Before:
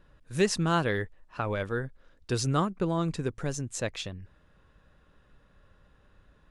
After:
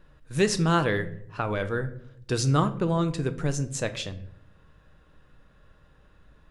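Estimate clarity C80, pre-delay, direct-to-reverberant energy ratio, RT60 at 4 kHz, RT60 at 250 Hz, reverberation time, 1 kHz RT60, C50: 18.5 dB, 6 ms, 9.5 dB, 0.45 s, 0.90 s, 0.65 s, 0.55 s, 15.0 dB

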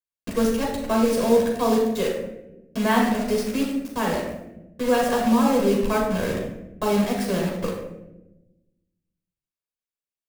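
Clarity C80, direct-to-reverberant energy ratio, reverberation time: 5.5 dB, −2.5 dB, 0.95 s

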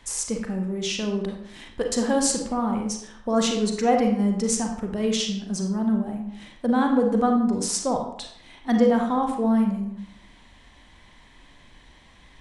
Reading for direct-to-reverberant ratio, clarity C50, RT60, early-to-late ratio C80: 2.5 dB, 5.0 dB, 0.70 s, 8.0 dB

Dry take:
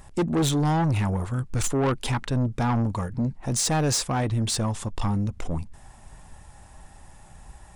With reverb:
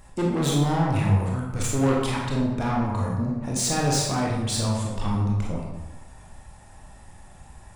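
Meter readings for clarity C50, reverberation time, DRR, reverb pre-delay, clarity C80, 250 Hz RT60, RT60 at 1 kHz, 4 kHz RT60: 1.0 dB, 1.1 s, −3.0 dB, 22 ms, 4.0 dB, 1.1 s, 1.1 s, 0.75 s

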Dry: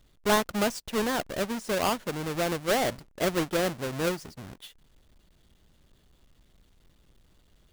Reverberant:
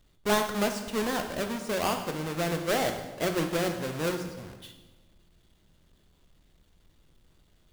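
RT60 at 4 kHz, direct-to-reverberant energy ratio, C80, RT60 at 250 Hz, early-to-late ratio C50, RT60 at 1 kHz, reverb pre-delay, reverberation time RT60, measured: 1.0 s, 4.5 dB, 9.5 dB, 1.4 s, 7.5 dB, 1.1 s, 11 ms, 1.2 s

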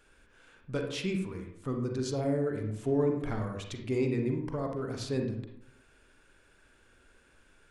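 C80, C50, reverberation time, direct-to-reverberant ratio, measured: 9.0 dB, 5.0 dB, 0.70 s, 3.0 dB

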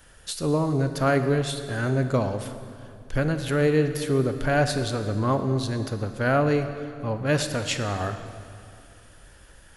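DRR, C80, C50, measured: 8.0 dB, 10.0 dB, 9.0 dB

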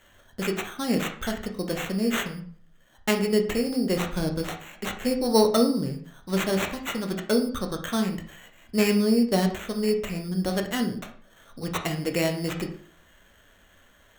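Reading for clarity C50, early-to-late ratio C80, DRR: 9.5 dB, 13.5 dB, 3.5 dB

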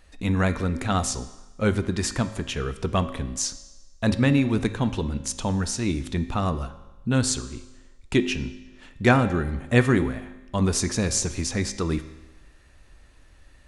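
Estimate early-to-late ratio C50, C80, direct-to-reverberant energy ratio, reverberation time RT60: 13.0 dB, 14.5 dB, 10.0 dB, 1.1 s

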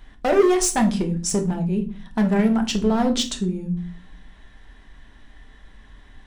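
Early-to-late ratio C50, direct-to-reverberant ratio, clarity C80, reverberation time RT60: 13.5 dB, 4.0 dB, 19.5 dB, non-exponential decay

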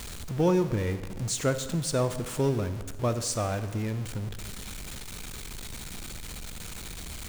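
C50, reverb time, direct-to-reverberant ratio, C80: 12.0 dB, 1.4 s, 11.0 dB, 13.5 dB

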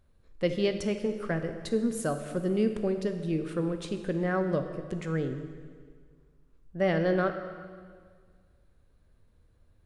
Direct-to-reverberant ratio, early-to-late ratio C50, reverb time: 7.0 dB, 8.5 dB, 1.8 s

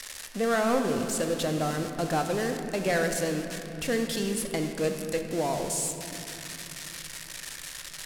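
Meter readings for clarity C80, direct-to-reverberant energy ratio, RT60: 6.5 dB, 4.5 dB, 2.7 s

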